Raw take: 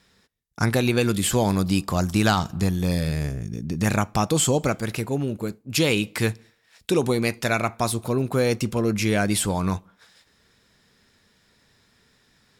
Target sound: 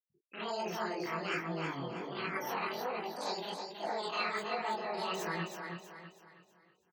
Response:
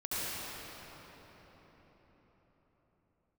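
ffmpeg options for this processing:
-filter_complex "[0:a]lowpass=f=1.4k:p=1,areverse,acompressor=threshold=-33dB:ratio=6,areverse[a];[1:a]atrim=start_sample=2205,atrim=end_sample=6174[b];[a][b]afir=irnorm=-1:irlink=0,afftfilt=real='re*gte(hypot(re,im),0.00562)':imag='im*gte(hypot(re,im),0.00562)':win_size=1024:overlap=0.75,highpass=f=590:p=1,asetrate=80262,aresample=44100,aecho=1:1:322|644|966|1288|1610:0.531|0.218|0.0892|0.0366|0.015,flanger=delay=18:depth=4.8:speed=1.3,volume=6dB"

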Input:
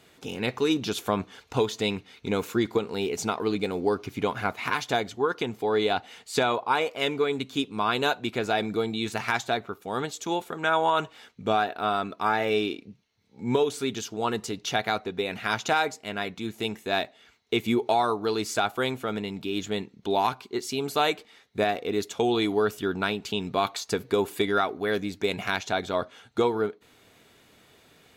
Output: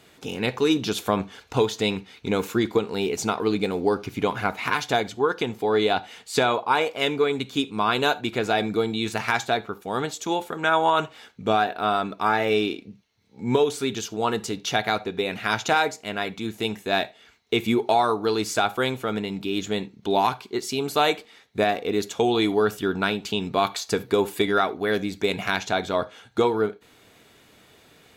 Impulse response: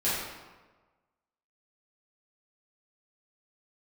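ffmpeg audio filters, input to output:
-filter_complex "[0:a]asplit=2[a][b];[1:a]atrim=start_sample=2205,atrim=end_sample=3969[c];[b][c]afir=irnorm=-1:irlink=0,volume=-24dB[d];[a][d]amix=inputs=2:normalize=0,volume=2.5dB"

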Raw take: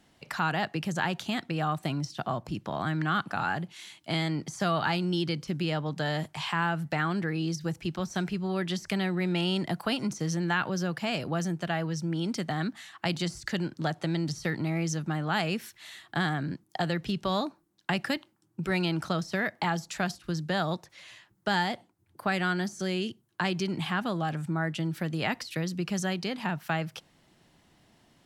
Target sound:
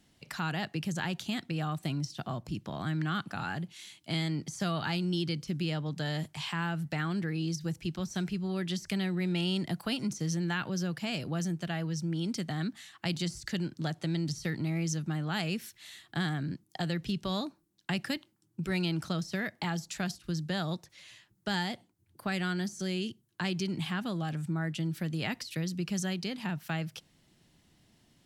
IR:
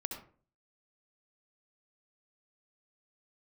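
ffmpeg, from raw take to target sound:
-af "equalizer=f=900:w=0.47:g=-8.5"

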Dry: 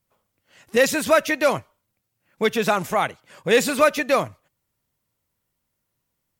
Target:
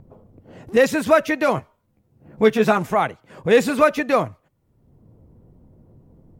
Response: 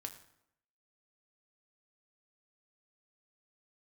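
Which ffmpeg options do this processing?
-filter_complex "[0:a]highshelf=f=2.2k:g=-11.5,bandreject=f=570:w=13,acrossover=split=630[a][b];[a]acompressor=mode=upward:threshold=-31dB:ratio=2.5[c];[c][b]amix=inputs=2:normalize=0,asettb=1/sr,asplit=3[d][e][f];[d]atrim=end=1.564[g];[e]atrim=start=1.56:end=2.78,asetpts=PTS-STARTPTS,afade=t=in:d=0.004:c=qsin,afade=t=out:st=1.216:d=0.004:c=qsin,asplit=2[h][i];[i]adelay=14,volume=-4.5dB[j];[h][j]amix=inputs=2:normalize=0,atrim=end_sample=53802[k];[f]atrim=start=2.776[l];[g][k]acrossfade=d=0.004:c1=hsin:c2=qsin[m];[m][l]acrossfade=d=0.004:c1=qsin:c2=hsin,volume=4dB"

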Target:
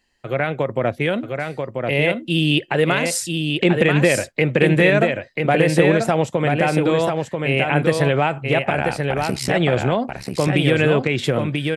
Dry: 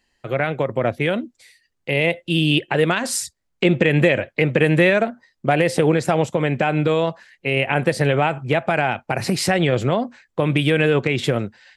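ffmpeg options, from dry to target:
-filter_complex "[0:a]asettb=1/sr,asplit=3[a][b][c];[a]atrim=end=8.704[d];[b]atrim=start=8.7:end=9.54,asetpts=PTS-STARTPTS,afade=t=in:d=0.004:c=qsin,afade=t=out:st=0.836:d=0.004:c=qsin,tremolo=f=69:d=1[e];[c]atrim=start=9.536[f];[d][e]acrossfade=d=0.004:c1=hsin:c2=qsin[g];[g][f]acrossfade=d=0.004:c1=qsin:c2=hsin,asplit=2[h][i];[i]aecho=0:1:988:0.596[j];[h][j]amix=inputs=2:normalize=0"

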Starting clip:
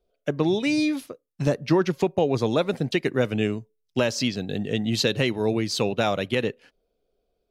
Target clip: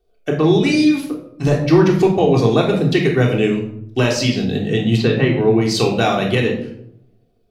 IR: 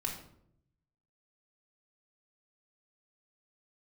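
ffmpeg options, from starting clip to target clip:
-filter_complex "[0:a]asplit=3[a][b][c];[a]afade=t=out:st=4.96:d=0.02[d];[b]lowpass=2.2k,afade=t=in:st=4.96:d=0.02,afade=t=out:st=5.6:d=0.02[e];[c]afade=t=in:st=5.6:d=0.02[f];[d][e][f]amix=inputs=3:normalize=0[g];[1:a]atrim=start_sample=2205[h];[g][h]afir=irnorm=-1:irlink=0,volume=5.5dB"

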